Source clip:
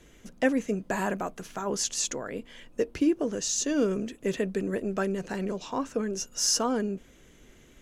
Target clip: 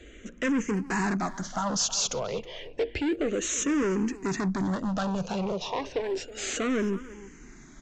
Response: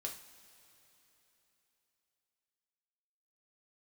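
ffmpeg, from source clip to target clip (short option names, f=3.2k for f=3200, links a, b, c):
-filter_complex "[0:a]aresample=16000,volume=31dB,asoftclip=hard,volume=-31dB,aresample=44100,asplit=2[a][b];[b]adelay=320,highpass=300,lowpass=3.4k,asoftclip=type=hard:threshold=-34dB,volume=-13dB[c];[a][c]amix=inputs=2:normalize=0,asplit=2[d][e];[e]afreqshift=-0.31[f];[d][f]amix=inputs=2:normalize=1,volume=8.5dB"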